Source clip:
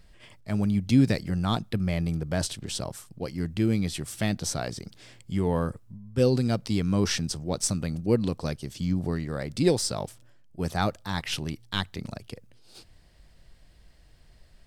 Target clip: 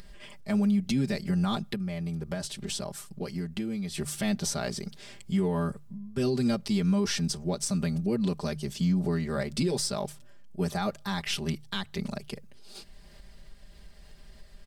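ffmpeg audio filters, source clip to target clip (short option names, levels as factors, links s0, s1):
-filter_complex "[0:a]bandreject=f=50:t=h:w=6,bandreject=f=100:t=h:w=6,bandreject=f=150:t=h:w=6,aecho=1:1:5:0.97,asettb=1/sr,asplit=3[s0][s1][s2];[s0]atrim=end=1.694[s3];[s1]atrim=start=1.69:end=3.98,asetpts=PTS-STARTPTS,afade=t=in:d=0.004:c=qsin,afade=t=out:st=2.286:d=0.004:c=qsin,acompressor=threshold=0.0316:ratio=10[s4];[s2]atrim=start=3.976[s5];[s3][s4]acrossfade=d=0.004:c1=hsin:c2=qsin[s6];[s6][s5]acrossfade=d=0.004:c1=qsin:c2=hsin,alimiter=limit=0.112:level=0:latency=1:release=165,acompressor=mode=upward:threshold=0.00794:ratio=2.5"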